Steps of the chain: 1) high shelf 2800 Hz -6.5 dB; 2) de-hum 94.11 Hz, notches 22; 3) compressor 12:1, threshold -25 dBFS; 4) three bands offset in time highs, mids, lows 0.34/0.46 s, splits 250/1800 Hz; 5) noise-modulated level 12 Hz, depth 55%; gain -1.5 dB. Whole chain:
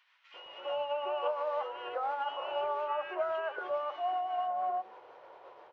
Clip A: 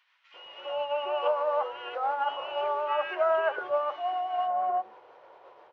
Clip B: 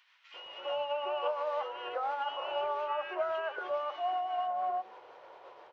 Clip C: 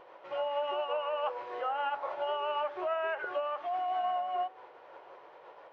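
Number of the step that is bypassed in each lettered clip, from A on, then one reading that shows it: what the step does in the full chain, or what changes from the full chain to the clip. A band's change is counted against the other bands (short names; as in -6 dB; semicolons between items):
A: 3, mean gain reduction 3.0 dB; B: 1, 4 kHz band +2.5 dB; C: 4, 2 kHz band +2.0 dB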